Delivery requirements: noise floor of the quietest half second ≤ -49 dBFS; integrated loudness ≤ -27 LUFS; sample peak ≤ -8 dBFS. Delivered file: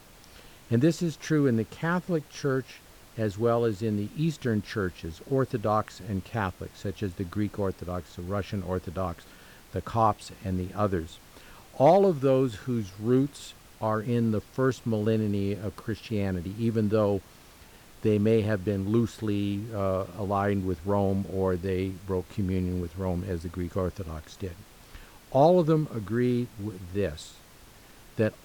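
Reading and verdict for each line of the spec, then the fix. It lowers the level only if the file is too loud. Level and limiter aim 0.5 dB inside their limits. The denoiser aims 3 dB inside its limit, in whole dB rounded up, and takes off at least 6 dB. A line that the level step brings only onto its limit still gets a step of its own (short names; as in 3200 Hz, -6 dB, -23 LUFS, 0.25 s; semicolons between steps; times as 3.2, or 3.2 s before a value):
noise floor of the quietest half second -52 dBFS: OK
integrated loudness -28.0 LUFS: OK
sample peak -9.5 dBFS: OK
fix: none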